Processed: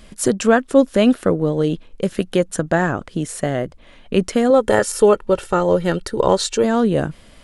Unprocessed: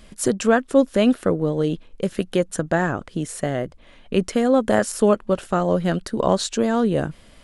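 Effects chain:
0:04.50–0:06.64: comb filter 2.2 ms, depth 54%
level +3 dB

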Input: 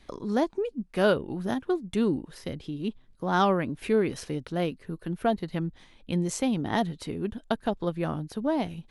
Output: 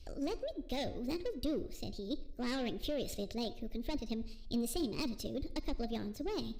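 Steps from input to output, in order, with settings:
hum removal 264.3 Hz, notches 28
soft clipping −23.5 dBFS, distortion −10 dB
on a send at −18 dB: convolution reverb RT60 1.1 s, pre-delay 73 ms
on the sum: wrong playback speed 33 rpm record played at 45 rpm
graphic EQ with 15 bands 160 Hz −8 dB, 630 Hz +7 dB, 1,600 Hz −3 dB, 4,000 Hz +10 dB
in parallel at +1.5 dB: output level in coarse steps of 10 dB
on the sum: guitar amp tone stack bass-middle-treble 10-0-1
level +9.5 dB

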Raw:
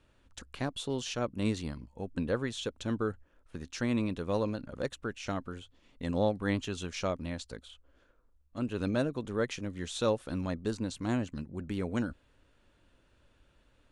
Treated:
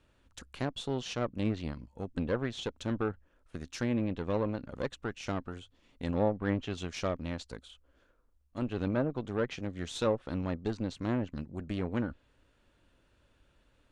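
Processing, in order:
harmonic generator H 3 −23 dB, 8 −25 dB, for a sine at −16.5 dBFS
treble cut that deepens with the level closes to 1,200 Hz, closed at −24.5 dBFS
level +1 dB

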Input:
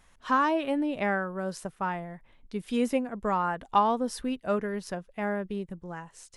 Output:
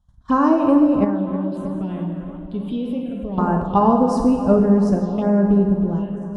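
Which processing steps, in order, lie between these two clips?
spectral tilt −4.5 dB per octave
noise gate −35 dBFS, range −20 dB
high shelf with overshoot 2,600 Hz +6.5 dB, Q 3
dense smooth reverb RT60 1.5 s, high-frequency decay 0.9×, DRR 2 dB
0:01.04–0:03.38: downward compressor 5 to 1, threshold −28 dBFS, peak gain reduction 13 dB
phaser swept by the level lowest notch 400 Hz, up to 3,400 Hz, full sweep at −20.5 dBFS
high-pass filter 54 Hz 12 dB per octave
feedback echo with a low-pass in the loop 317 ms, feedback 68%, low-pass 2,700 Hz, level −12.5 dB
level +5.5 dB

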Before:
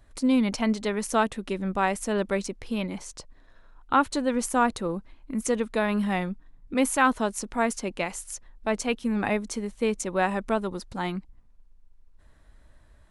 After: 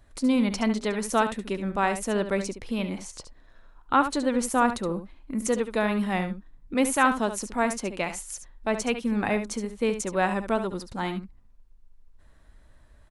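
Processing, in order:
single-tap delay 71 ms −10 dB

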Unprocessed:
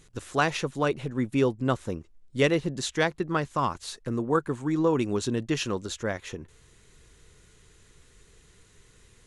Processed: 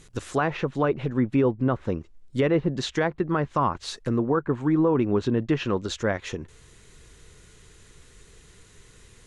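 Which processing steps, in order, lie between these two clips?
treble cut that deepens with the level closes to 1,700 Hz, closed at −23 dBFS
brickwall limiter −18 dBFS, peak gain reduction 7 dB
level +5 dB

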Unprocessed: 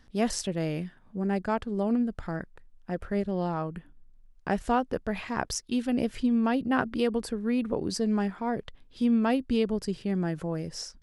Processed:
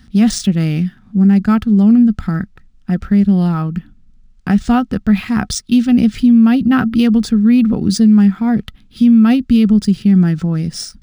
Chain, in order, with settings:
high-pass filter 53 Hz 6 dB per octave
guitar amp tone stack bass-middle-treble 6-0-2
hollow resonant body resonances 210/740/1,300 Hz, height 11 dB, ringing for 50 ms
boost into a limiter +33 dB
linearly interpolated sample-rate reduction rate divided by 3×
level −3 dB

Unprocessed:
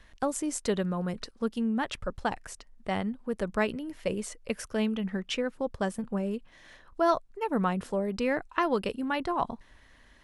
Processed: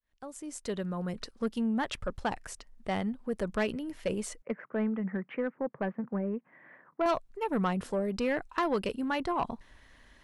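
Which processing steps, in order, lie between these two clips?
fade in at the beginning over 1.40 s
0:04.42–0:07.06: Chebyshev band-pass filter 140–2,100 Hz, order 4
soft clipping −21 dBFS, distortion −16 dB

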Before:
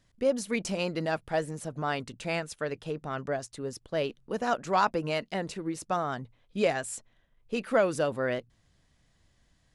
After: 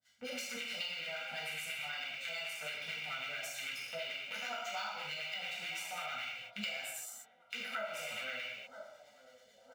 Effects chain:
loose part that buzzes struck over −46 dBFS, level −24 dBFS
guitar amp tone stack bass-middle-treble 5-5-5
output level in coarse steps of 10 dB
meter weighting curve A
delay with a band-pass on its return 965 ms, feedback 48%, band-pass 460 Hz, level −18 dB
two-band tremolo in antiphase 9.1 Hz, depth 100%, crossover 920 Hz
notch filter 5,300 Hz, Q 21
comb filter 1.4 ms, depth 97%
reverb whose tail is shaped and stops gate 280 ms falling, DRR −8 dB
downward compressor 6 to 1, threshold −48 dBFS, peak gain reduction 15.5 dB
linearly interpolated sample-rate reduction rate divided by 2×
level +10 dB

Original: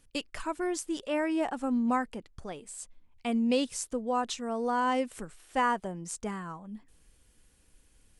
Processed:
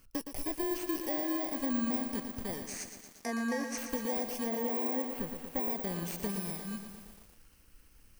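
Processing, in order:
samples in bit-reversed order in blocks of 32 samples
de-essing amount 65%
0:02.63–0:03.78: loudspeaker in its box 320–9,900 Hz, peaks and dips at 1,800 Hz +9 dB, 3,200 Hz −8 dB, 6,000 Hz +10 dB
downward compressor, threshold −33 dBFS, peak gain reduction 7.5 dB
0:04.46–0:05.71: parametric band 6,500 Hz −14.5 dB 1.3 octaves
feedback echo at a low word length 117 ms, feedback 80%, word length 9 bits, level −8 dB
level +2.5 dB

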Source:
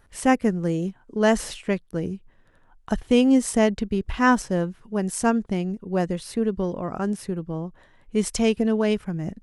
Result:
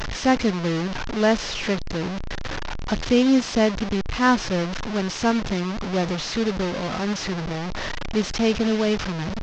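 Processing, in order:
linear delta modulator 32 kbit/s, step −22 dBFS

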